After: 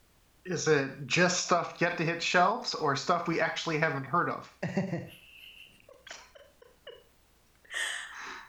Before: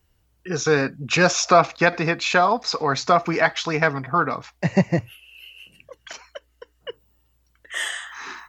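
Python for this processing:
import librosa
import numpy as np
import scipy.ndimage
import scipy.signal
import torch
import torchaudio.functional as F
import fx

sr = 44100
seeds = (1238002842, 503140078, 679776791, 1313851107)

y = fx.rev_schroeder(x, sr, rt60_s=0.35, comb_ms=30, drr_db=9.0)
y = fx.dmg_noise_colour(y, sr, seeds[0], colour='pink', level_db=-58.0)
y = fx.end_taper(y, sr, db_per_s=120.0)
y = F.gain(torch.from_numpy(y), -7.0).numpy()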